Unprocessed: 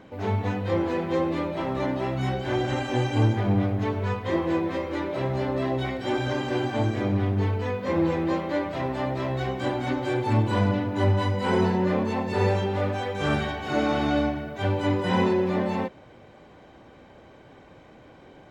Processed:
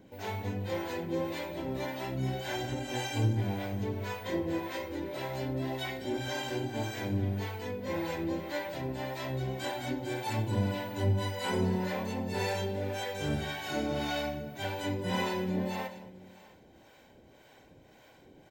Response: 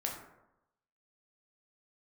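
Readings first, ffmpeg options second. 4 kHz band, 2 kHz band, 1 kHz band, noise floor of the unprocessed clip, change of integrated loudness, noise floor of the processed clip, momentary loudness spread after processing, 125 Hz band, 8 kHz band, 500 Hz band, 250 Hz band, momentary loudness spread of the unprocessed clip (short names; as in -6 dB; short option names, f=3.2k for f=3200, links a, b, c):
-2.5 dB, -6.0 dB, -8.5 dB, -50 dBFS, -8.0 dB, -58 dBFS, 6 LU, -8.0 dB, n/a, -9.0 dB, -9.0 dB, 5 LU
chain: -filter_complex "[0:a]bandreject=f=1.2k:w=5.6,aecho=1:1:222:0.2,asplit=2[a][b];[1:a]atrim=start_sample=2205,adelay=53[c];[b][c]afir=irnorm=-1:irlink=0,volume=-15.5dB[d];[a][d]amix=inputs=2:normalize=0,acrossover=split=530[e][f];[e]aeval=exprs='val(0)*(1-0.7/2+0.7/2*cos(2*PI*1.8*n/s))':c=same[g];[f]aeval=exprs='val(0)*(1-0.7/2-0.7/2*cos(2*PI*1.8*n/s))':c=same[h];[g][h]amix=inputs=2:normalize=0,aemphasis=mode=production:type=75fm,asplit=2[i][j];[j]aecho=0:1:659:0.0794[k];[i][k]amix=inputs=2:normalize=0,volume=-4.5dB"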